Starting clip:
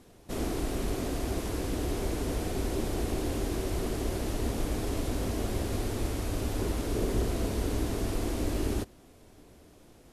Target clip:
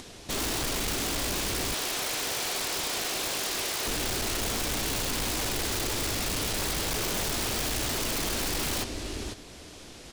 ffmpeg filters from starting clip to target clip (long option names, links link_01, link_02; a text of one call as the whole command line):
ffmpeg -i in.wav -filter_complex "[0:a]lowpass=11000,equalizer=frequency=4400:width=0.39:gain=12.5,aecho=1:1:499:0.251,aeval=exprs='0.141*(cos(1*acos(clip(val(0)/0.141,-1,1)))-cos(1*PI/2))+0.0316*(cos(2*acos(clip(val(0)/0.141,-1,1)))-cos(2*PI/2))+0.0112*(cos(3*acos(clip(val(0)/0.141,-1,1)))-cos(3*PI/2))+0.0112*(cos(6*acos(clip(val(0)/0.141,-1,1)))-cos(6*PI/2))+0.01*(cos(8*acos(clip(val(0)/0.141,-1,1)))-cos(8*PI/2))':channel_layout=same,asettb=1/sr,asplit=3[link_01][link_02][link_03];[link_01]atrim=end=1.744[link_04];[link_02]atrim=start=1.74:end=3.87,asetpts=PTS-STARTPTS,afade=type=in:duration=0.004:curve=qsin,afade=type=out:start_time=2.126:duration=0.004:curve=qsin,highpass=620[link_05];[link_03]atrim=start=3.866[link_06];[link_04][link_05]acrossfade=duration=0.004:curve1=hsin:curve2=qsin[link_07];[link_07][link_06]acrossfade=duration=0.004:curve1=qsin:curve2=hsin,aeval=exprs='(mod(25.1*val(0)+1,2)-1)/25.1':channel_layout=same,acompressor=mode=upward:threshold=-49dB:ratio=2.5,volume=35.5dB,asoftclip=hard,volume=-35.5dB,volume=7.5dB" out.wav